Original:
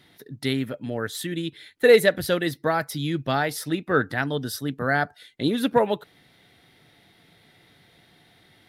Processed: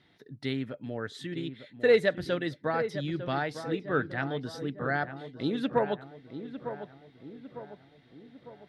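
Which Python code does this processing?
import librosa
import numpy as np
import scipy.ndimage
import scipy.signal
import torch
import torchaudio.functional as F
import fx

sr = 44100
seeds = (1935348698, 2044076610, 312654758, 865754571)

y = fx.air_absorb(x, sr, metres=110.0)
y = fx.echo_filtered(y, sr, ms=902, feedback_pct=53, hz=1600.0, wet_db=-10)
y = y * librosa.db_to_amplitude(-6.5)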